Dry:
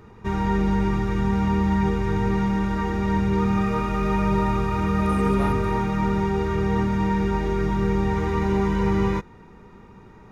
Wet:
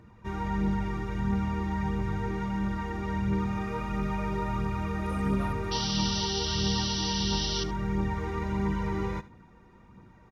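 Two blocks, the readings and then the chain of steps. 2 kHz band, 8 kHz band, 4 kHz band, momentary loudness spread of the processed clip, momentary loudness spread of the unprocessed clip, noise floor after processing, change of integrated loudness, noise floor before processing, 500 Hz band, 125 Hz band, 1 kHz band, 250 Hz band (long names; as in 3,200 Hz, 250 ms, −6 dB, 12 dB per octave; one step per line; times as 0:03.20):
−6.5 dB, can't be measured, +9.5 dB, 5 LU, 3 LU, −55 dBFS, −7.0 dB, −47 dBFS, −10.5 dB, −7.0 dB, −8.0 dB, −8.5 dB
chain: notch comb filter 420 Hz
phase shifter 1.5 Hz, delay 2.9 ms, feedback 36%
sound drawn into the spectrogram noise, 0:05.71–0:07.64, 2,700–6,000 Hz −26 dBFS
single-tap delay 74 ms −17 dB
level −7.5 dB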